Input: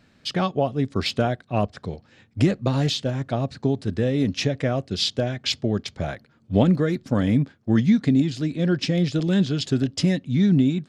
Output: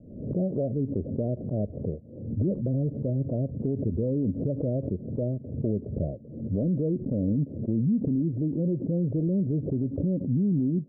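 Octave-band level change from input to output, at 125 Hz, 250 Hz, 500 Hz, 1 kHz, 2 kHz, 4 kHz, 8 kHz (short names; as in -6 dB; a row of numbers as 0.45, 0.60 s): -4.0 dB, -5.0 dB, -5.5 dB, under -20 dB, under -40 dB, under -40 dB, under -40 dB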